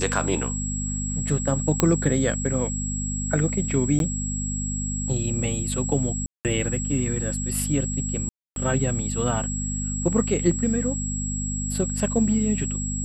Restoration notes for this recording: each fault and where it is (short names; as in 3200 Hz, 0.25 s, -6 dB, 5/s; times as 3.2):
hum 50 Hz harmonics 5 -29 dBFS
tone 7700 Hz -30 dBFS
1.8 pop -3 dBFS
3.99–4 gap 12 ms
6.26–6.45 gap 0.188 s
8.29–8.56 gap 0.272 s